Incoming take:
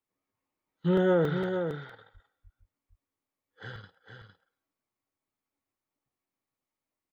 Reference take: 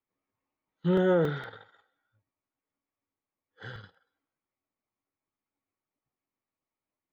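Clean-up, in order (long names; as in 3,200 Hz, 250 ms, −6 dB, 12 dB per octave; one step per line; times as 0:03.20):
high-pass at the plosives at 0:02.13/0:02.43
echo removal 457 ms −7 dB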